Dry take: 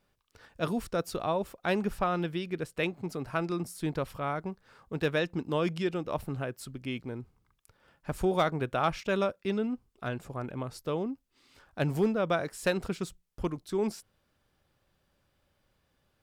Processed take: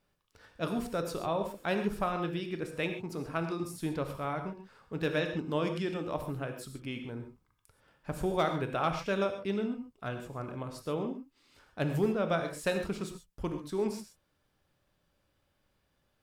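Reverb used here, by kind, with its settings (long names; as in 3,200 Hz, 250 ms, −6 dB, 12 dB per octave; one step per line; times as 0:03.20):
reverb whose tail is shaped and stops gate 160 ms flat, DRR 5.5 dB
level −3 dB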